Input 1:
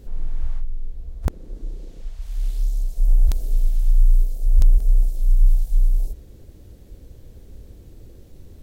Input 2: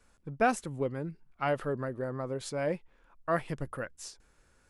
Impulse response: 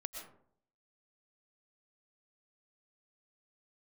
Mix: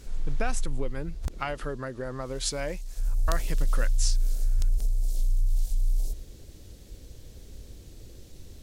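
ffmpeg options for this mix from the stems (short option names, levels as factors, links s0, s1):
-filter_complex "[0:a]alimiter=limit=0.15:level=0:latency=1:release=37,volume=1.5,afade=t=out:st=1.35:d=0.46:silence=0.354813,afade=t=in:st=2.85:d=0.24:silence=0.316228,asplit=2[s0][s1];[s1]volume=0.398[s2];[1:a]acompressor=threshold=0.02:ratio=5,volume=1.33[s3];[2:a]atrim=start_sample=2205[s4];[s2][s4]afir=irnorm=-1:irlink=0[s5];[s0][s3][s5]amix=inputs=3:normalize=0,equalizer=f=5600:t=o:w=2.8:g=11.5"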